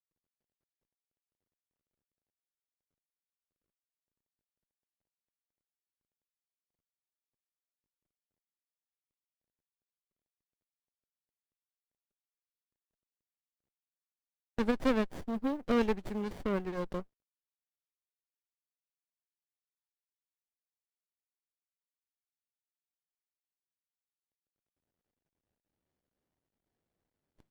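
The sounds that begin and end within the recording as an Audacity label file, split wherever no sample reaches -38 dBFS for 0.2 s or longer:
14.590000	17.020000	sound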